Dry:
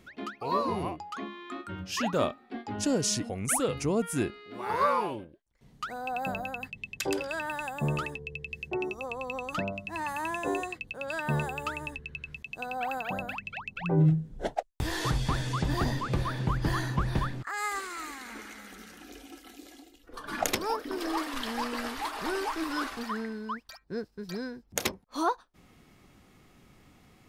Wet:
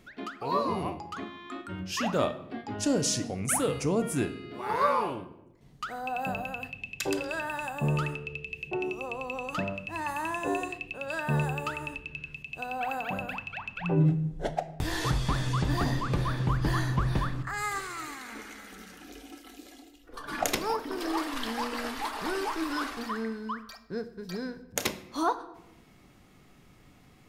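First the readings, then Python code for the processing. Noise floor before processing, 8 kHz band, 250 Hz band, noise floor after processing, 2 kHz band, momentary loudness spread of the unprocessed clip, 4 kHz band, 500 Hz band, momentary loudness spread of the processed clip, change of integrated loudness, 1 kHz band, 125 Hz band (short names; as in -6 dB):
-60 dBFS, +0.5 dB, +0.5 dB, -57 dBFS, +0.5 dB, 12 LU, +0.5 dB, +0.5 dB, 12 LU, +0.5 dB, +0.5 dB, +1.5 dB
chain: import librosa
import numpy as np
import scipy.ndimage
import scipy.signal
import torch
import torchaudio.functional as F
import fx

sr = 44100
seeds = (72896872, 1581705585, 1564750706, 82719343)

y = fx.room_shoebox(x, sr, seeds[0], volume_m3=310.0, walls='mixed', distance_m=0.36)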